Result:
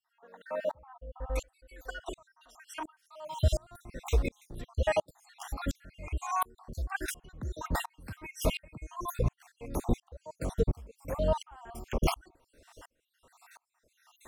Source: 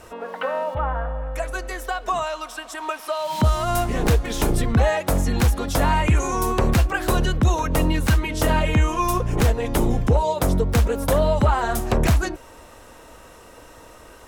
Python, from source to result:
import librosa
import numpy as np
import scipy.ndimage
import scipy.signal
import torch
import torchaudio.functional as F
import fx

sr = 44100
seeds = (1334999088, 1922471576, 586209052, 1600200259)

y = fx.spec_dropout(x, sr, seeds[0], share_pct=58)
y = fx.comb(y, sr, ms=4.0, depth=0.69, at=(0.89, 1.91))
y = fx.high_shelf(y, sr, hz=4900.0, db=-4.0, at=(5.7, 7.3))
y = fx.tremolo_decay(y, sr, direction='swelling', hz=1.4, depth_db=35)